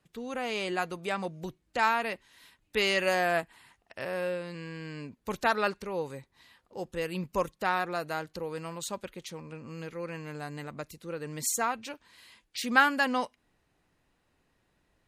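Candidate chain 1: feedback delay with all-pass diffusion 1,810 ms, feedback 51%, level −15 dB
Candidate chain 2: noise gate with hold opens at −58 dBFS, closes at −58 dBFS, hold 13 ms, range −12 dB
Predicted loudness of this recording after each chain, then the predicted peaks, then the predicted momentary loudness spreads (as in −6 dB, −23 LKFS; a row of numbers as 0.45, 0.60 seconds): −31.5, −31.5 LKFS; −8.5, −8.5 dBFS; 18, 16 LU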